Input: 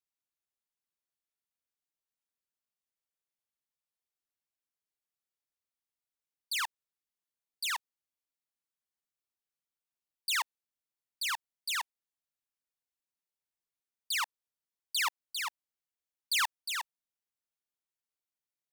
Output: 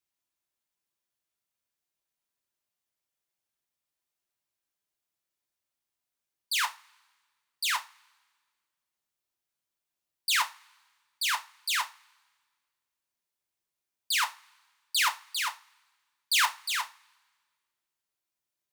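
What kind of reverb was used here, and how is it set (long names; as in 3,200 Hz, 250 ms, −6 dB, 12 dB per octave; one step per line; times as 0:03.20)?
coupled-rooms reverb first 0.26 s, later 1.6 s, from −27 dB, DRR 4.5 dB
level +4 dB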